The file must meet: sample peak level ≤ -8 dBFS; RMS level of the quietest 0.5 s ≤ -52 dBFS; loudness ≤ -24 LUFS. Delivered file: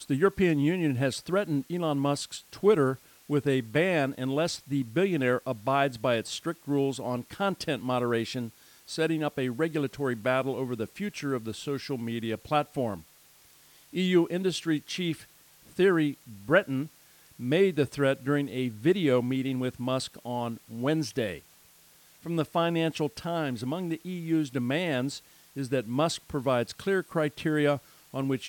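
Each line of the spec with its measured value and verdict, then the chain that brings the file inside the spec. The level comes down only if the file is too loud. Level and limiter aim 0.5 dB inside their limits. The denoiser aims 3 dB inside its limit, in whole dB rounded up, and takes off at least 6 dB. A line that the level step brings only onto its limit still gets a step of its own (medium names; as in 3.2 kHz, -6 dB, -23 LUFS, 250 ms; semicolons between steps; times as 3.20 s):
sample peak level -9.0 dBFS: pass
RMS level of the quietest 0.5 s -58 dBFS: pass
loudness -29.0 LUFS: pass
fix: none needed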